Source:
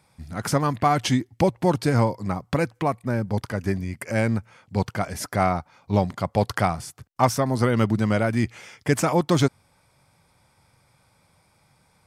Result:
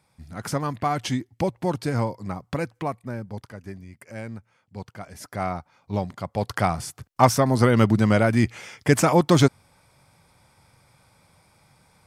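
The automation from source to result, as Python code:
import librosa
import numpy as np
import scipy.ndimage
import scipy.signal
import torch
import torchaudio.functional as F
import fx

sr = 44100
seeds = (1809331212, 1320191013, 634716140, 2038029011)

y = fx.gain(x, sr, db=fx.line((2.87, -4.5), (3.62, -13.0), (4.94, -13.0), (5.51, -5.5), (6.35, -5.5), (6.83, 3.0)))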